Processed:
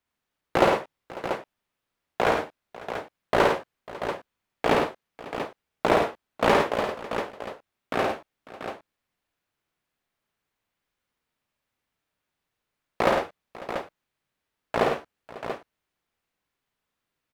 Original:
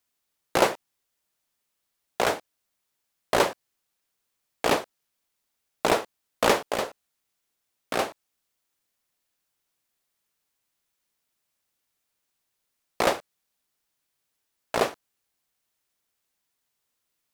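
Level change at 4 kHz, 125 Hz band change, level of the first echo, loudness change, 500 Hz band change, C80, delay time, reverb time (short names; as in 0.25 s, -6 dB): -2.5 dB, +5.5 dB, -3.5 dB, 0.0 dB, +3.0 dB, none, 53 ms, none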